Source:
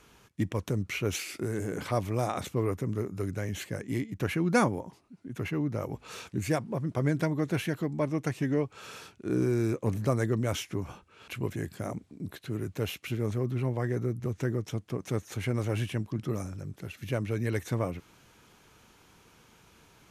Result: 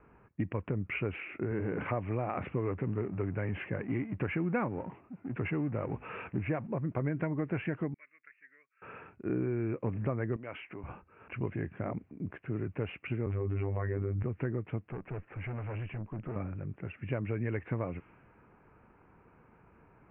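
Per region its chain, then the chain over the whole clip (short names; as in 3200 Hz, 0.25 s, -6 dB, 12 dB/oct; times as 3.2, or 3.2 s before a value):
1.51–6.67 G.711 law mismatch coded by mu + HPF 63 Hz
7.94–8.82 ladder band-pass 2500 Hz, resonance 40% + high shelf 3700 Hz -5 dB + fixed phaser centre 2000 Hz, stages 4
10.36–10.84 bell 2800 Hz +4.5 dB 1 oct + compressor 2.5:1, threshold -35 dBFS + HPF 430 Hz 6 dB/oct
13.26–14.23 comb 7.4 ms, depth 37% + robotiser 98.8 Hz + fast leveller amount 100%
14.9–16.36 air absorption 88 m + tube stage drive 34 dB, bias 0.4
whole clip: steep low-pass 2700 Hz 72 dB/oct; compressor 4:1, threshold -29 dBFS; low-pass opened by the level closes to 1300 Hz, open at -30 dBFS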